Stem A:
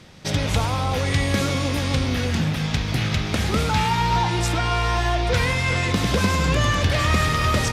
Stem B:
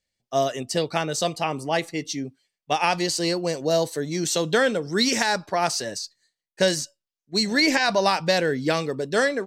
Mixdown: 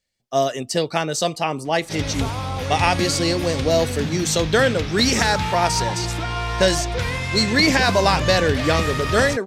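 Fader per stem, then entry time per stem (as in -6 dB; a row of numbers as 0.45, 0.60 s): -3.5, +3.0 dB; 1.65, 0.00 s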